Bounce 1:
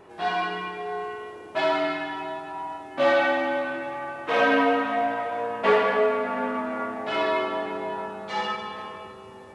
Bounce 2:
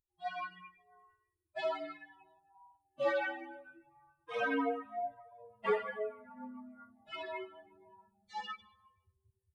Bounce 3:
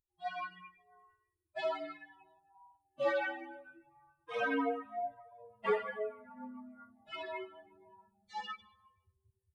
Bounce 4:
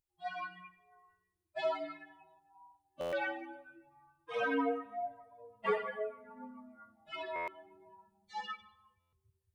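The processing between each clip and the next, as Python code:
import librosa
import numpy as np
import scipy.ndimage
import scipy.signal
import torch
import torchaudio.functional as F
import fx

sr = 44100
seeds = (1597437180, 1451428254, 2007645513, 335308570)

y1 = fx.bin_expand(x, sr, power=3.0)
y1 = F.gain(torch.from_numpy(y1), -8.0).numpy()
y2 = y1
y3 = fx.room_shoebox(y2, sr, seeds[0], volume_m3=3600.0, walls='furnished', distance_m=0.65)
y3 = fx.buffer_glitch(y3, sr, at_s=(3.0, 7.35, 9.0), block=512, repeats=10)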